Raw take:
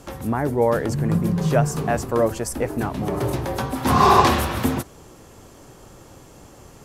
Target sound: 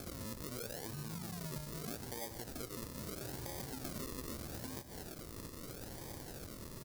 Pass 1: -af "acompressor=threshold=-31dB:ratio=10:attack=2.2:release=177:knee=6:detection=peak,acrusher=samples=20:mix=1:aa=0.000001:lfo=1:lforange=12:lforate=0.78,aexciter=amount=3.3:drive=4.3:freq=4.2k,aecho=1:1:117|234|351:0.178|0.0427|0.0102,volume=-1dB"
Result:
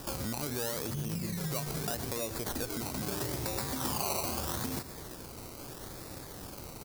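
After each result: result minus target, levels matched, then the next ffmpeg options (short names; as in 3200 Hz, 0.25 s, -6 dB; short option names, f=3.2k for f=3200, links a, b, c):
compressor: peak gain reduction -9 dB; decimation with a swept rate: distortion -6 dB
-af "acompressor=threshold=-41dB:ratio=10:attack=2.2:release=177:knee=6:detection=peak,acrusher=samples=20:mix=1:aa=0.000001:lfo=1:lforange=12:lforate=0.78,aexciter=amount=3.3:drive=4.3:freq=4.2k,aecho=1:1:117|234|351:0.178|0.0427|0.0102,volume=-1dB"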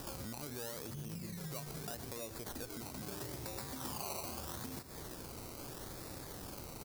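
decimation with a swept rate: distortion -6 dB
-af "acompressor=threshold=-41dB:ratio=10:attack=2.2:release=177:knee=6:detection=peak,acrusher=samples=45:mix=1:aa=0.000001:lfo=1:lforange=27:lforate=0.78,aexciter=amount=3.3:drive=4.3:freq=4.2k,aecho=1:1:117|234|351:0.178|0.0427|0.0102,volume=-1dB"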